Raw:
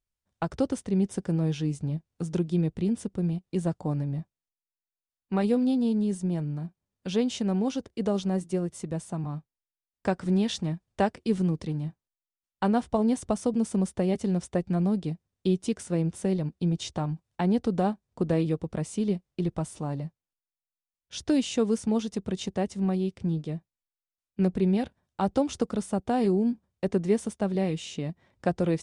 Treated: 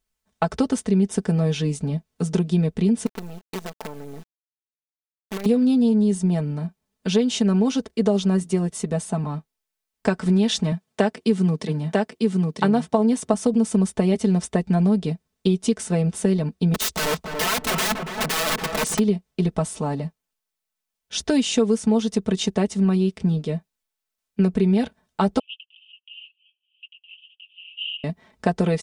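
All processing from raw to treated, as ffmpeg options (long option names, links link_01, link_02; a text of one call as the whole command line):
ffmpeg -i in.wav -filter_complex "[0:a]asettb=1/sr,asplit=3[link_01][link_02][link_03];[link_01]atrim=end=3.064[link_04];[link_02]atrim=start=3.06:end=5.46,asetpts=PTS-STARTPTS,afade=type=in:duration=0.004:curve=qsin,afade=type=out:start_time=2.396:duration=0.004:curve=qsin,highpass=240,lowpass=4500,acompressor=threshold=-38dB:ratio=4:attack=3.2:release=140:knee=1:detection=peak,acrusher=bits=7:dc=4:mix=0:aa=0.000001[link_05];[link_03]atrim=start=5.456[link_06];[link_04][link_05]acrossfade=duration=0.004:curve1=hsin:curve2=qsin[link_07];[link_07][link_06]acrossfade=duration=0.004:curve1=qsin:curve2=hsin,asettb=1/sr,asplit=3[link_08][link_09][link_10];[link_08]atrim=end=10.724[link_11];[link_09]atrim=start=10.72:end=13.34,asetpts=PTS-STARTPTS,afade=type=in:duration=0.004:curve=qsin,afade=type=out:start_time=2.616:duration=0.004:curve=qsin,highpass=frequency=100:width=0.5412,highpass=frequency=100:width=1.3066,aecho=1:1:947:0.668,atrim=end_sample=115542[link_12];[link_10]atrim=start=13.336[link_13];[link_11][link_12]acrossfade=duration=0.004:curve1=hsin:curve2=qsin[link_14];[link_14][link_13]acrossfade=duration=0.004:curve1=qsin:curve2=hsin,asettb=1/sr,asplit=3[link_15][link_16][link_17];[link_15]atrim=end=16.744[link_18];[link_16]atrim=start=16.74:end=18.99,asetpts=PTS-STARTPTS,afade=type=in:duration=0.004:curve=qsin,afade=type=out:start_time=2.246:duration=0.004:curve=qsin,highshelf=frequency=2300:gain=5,aeval=exprs='(mod(25.1*val(0)+1,2)-1)/25.1':channel_layout=same,asplit=2[link_19][link_20];[link_20]adelay=283,lowpass=frequency=1400:poles=1,volume=-4dB,asplit=2[link_21][link_22];[link_22]adelay=283,lowpass=frequency=1400:poles=1,volume=0.27,asplit=2[link_23][link_24];[link_24]adelay=283,lowpass=frequency=1400:poles=1,volume=0.27,asplit=2[link_25][link_26];[link_26]adelay=283,lowpass=frequency=1400:poles=1,volume=0.27[link_27];[link_19][link_21][link_23][link_25][link_27]amix=inputs=5:normalize=0,atrim=end_sample=99225[link_28];[link_17]atrim=start=18.986[link_29];[link_18][link_28]acrossfade=duration=0.004:curve1=hsin:curve2=qsin[link_30];[link_30][link_29]acrossfade=duration=0.004:curve1=qsin:curve2=hsin,asettb=1/sr,asplit=3[link_31][link_32][link_33];[link_31]atrim=end=25.394[link_34];[link_32]atrim=start=25.39:end=28.04,asetpts=PTS-STARTPTS,afade=type=in:duration=0.004:curve=qsin,afade=type=out:start_time=2.646:duration=0.004:curve=qsin,acompressor=mode=upward:threshold=-26dB:ratio=2.5:attack=3.2:release=140:knee=2.83:detection=peak,asuperpass=centerf=2900:order=8:qfactor=4.9[link_35];[link_33]atrim=start=28.036[link_36];[link_34][link_35]acrossfade=duration=0.004:curve1=hsin:curve2=qsin[link_37];[link_37][link_36]acrossfade=duration=0.004:curve1=qsin:curve2=hsin,lowshelf=frequency=200:gain=-5,aecho=1:1:4.6:0.75,acompressor=threshold=-24dB:ratio=4,volume=8.5dB" out.wav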